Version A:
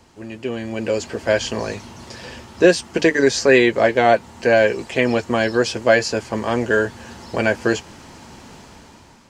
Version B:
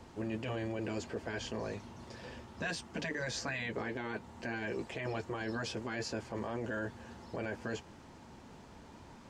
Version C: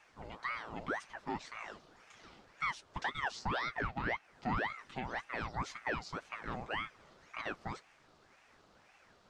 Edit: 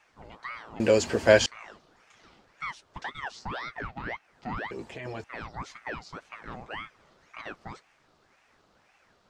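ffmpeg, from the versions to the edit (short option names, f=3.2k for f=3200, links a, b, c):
-filter_complex "[2:a]asplit=3[a][b][c];[a]atrim=end=0.802[d];[0:a]atrim=start=0.798:end=1.462[e];[b]atrim=start=1.458:end=4.712[f];[1:a]atrim=start=4.708:end=5.242[g];[c]atrim=start=5.238[h];[d][e]acrossfade=d=0.004:c1=hsin:c2=hsin[i];[i][f]acrossfade=d=0.004:c1=hsin:c2=hsin[j];[j][g]acrossfade=d=0.004:c1=hsin:c2=hsin[k];[k][h]acrossfade=d=0.004:c1=hsin:c2=hsin"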